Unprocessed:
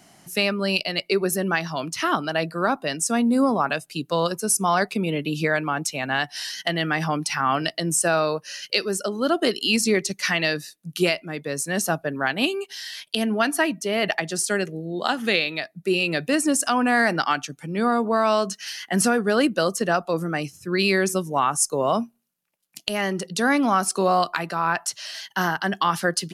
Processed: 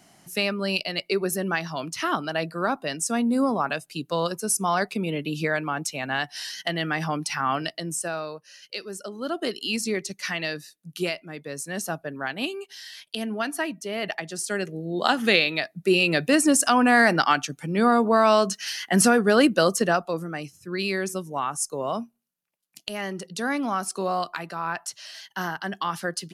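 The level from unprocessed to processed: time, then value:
0:07.51 −3 dB
0:08.49 −13.5 dB
0:09.49 −6.5 dB
0:14.37 −6.5 dB
0:15.04 +2 dB
0:19.79 +2 dB
0:20.28 −6.5 dB

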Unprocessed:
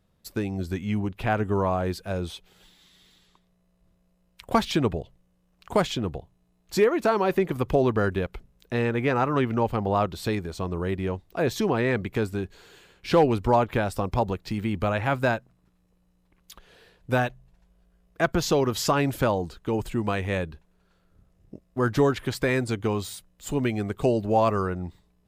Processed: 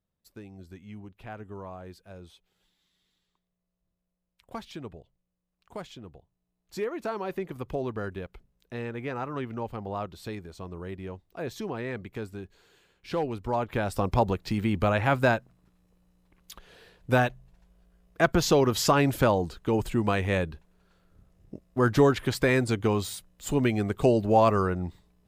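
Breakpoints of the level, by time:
0:06.17 −16.5 dB
0:06.97 −10 dB
0:13.42 −10 dB
0:14.05 +1 dB

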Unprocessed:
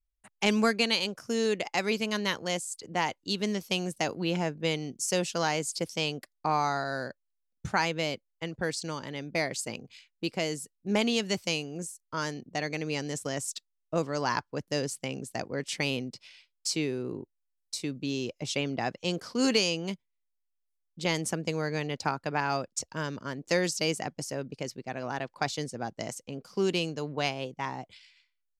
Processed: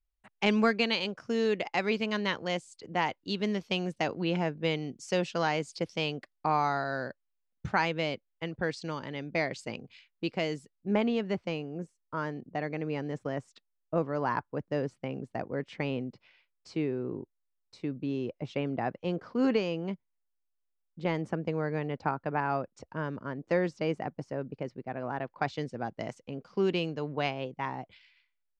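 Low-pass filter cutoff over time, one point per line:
0:10.58 3,300 Hz
0:11.07 1,600 Hz
0:25.15 1,600 Hz
0:25.62 2,700 Hz

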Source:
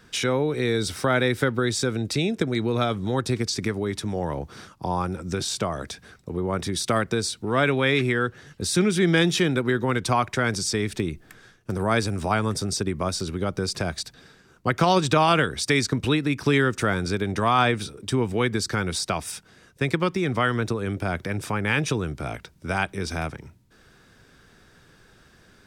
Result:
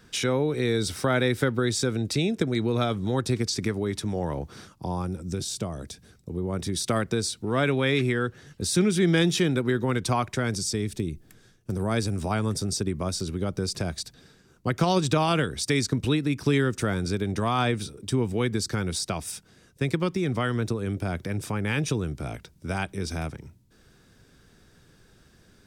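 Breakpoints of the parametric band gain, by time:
parametric band 1,400 Hz 2.9 octaves
0:04.53 −3.5 dB
0:05.24 −13 dB
0:06.33 −13 dB
0:06.86 −5 dB
0:10.21 −5 dB
0:11.06 −14 dB
0:12.19 −7 dB

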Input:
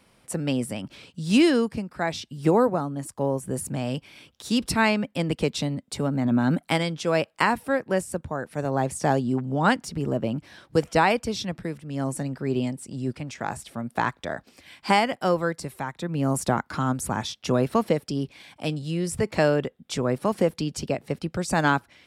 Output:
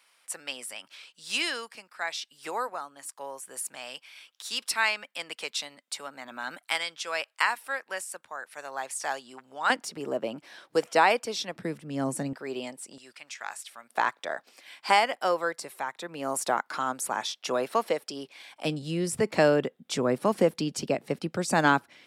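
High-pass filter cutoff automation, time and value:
1,200 Hz
from 0:09.70 440 Hz
from 0:11.56 190 Hz
from 0:12.33 550 Hz
from 0:12.98 1,400 Hz
from 0:13.90 540 Hz
from 0:18.65 190 Hz

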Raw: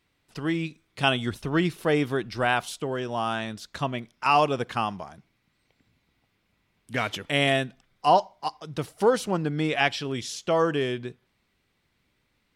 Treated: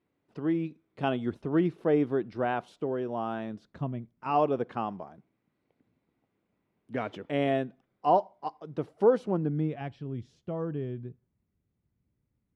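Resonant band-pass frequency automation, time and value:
resonant band-pass, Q 0.78
0:03.47 340 Hz
0:04.12 100 Hz
0:04.37 360 Hz
0:09.23 360 Hz
0:09.84 100 Hz

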